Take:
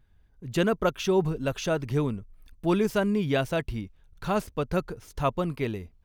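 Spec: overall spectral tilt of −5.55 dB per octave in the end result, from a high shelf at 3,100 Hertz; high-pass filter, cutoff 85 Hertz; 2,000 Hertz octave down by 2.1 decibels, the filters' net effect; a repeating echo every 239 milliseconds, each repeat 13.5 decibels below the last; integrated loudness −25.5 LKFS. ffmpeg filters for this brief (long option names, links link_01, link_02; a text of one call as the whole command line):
ffmpeg -i in.wav -af "highpass=85,equalizer=frequency=2000:width_type=o:gain=-6,highshelf=frequency=3100:gain=7,aecho=1:1:239|478:0.211|0.0444,volume=2.5dB" out.wav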